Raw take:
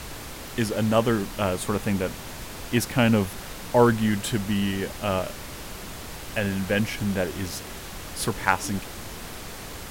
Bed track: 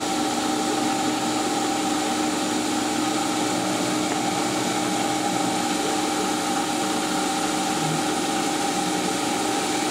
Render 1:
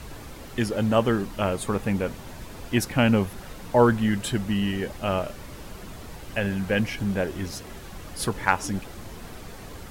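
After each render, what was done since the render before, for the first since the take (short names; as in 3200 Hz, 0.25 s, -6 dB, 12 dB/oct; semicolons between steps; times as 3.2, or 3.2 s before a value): denoiser 8 dB, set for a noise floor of -38 dBFS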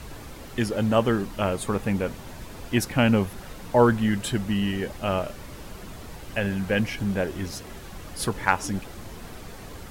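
nothing audible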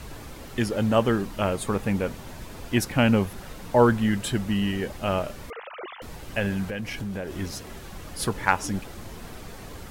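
5.5–6.02 sine-wave speech; 6.69–7.37 compressor, threshold -28 dBFS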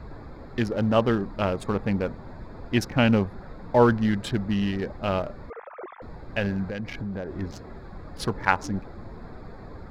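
Wiener smoothing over 15 samples; resonant high shelf 6600 Hz -7.5 dB, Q 1.5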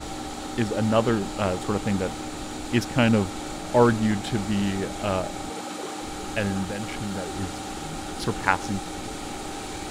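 add bed track -11 dB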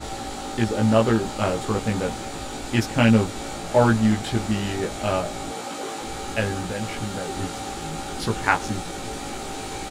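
doubler 18 ms -2 dB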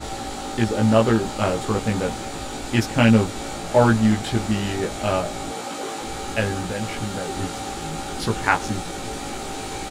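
gain +1.5 dB; limiter -3 dBFS, peak gain reduction 1 dB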